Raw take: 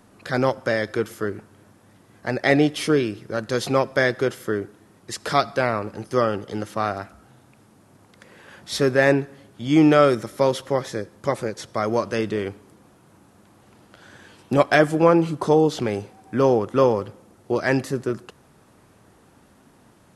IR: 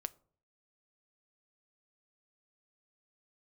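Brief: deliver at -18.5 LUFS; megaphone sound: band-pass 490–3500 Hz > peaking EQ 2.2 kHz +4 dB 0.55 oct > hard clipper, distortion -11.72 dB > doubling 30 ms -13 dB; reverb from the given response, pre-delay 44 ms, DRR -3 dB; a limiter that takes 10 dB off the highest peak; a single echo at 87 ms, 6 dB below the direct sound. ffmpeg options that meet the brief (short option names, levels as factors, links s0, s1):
-filter_complex "[0:a]alimiter=limit=0.251:level=0:latency=1,aecho=1:1:87:0.501,asplit=2[s0][s1];[1:a]atrim=start_sample=2205,adelay=44[s2];[s1][s2]afir=irnorm=-1:irlink=0,volume=1.78[s3];[s0][s3]amix=inputs=2:normalize=0,highpass=490,lowpass=3500,equalizer=f=2200:t=o:w=0.55:g=4,asoftclip=type=hard:threshold=0.133,asplit=2[s4][s5];[s5]adelay=30,volume=0.224[s6];[s4][s6]amix=inputs=2:normalize=0,volume=1.88"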